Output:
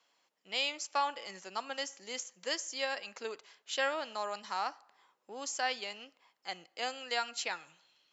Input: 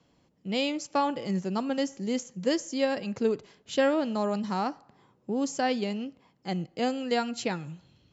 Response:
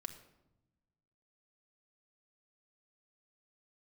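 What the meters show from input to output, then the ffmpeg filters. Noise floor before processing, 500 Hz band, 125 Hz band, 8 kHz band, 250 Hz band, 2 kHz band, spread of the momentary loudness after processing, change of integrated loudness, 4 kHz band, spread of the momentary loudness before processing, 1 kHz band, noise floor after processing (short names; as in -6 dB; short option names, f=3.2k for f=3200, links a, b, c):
-68 dBFS, -11.5 dB, under -25 dB, n/a, -23.5 dB, -0.5 dB, 11 LU, -7.0 dB, 0.0 dB, 10 LU, -4.5 dB, -78 dBFS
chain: -af "highpass=1k"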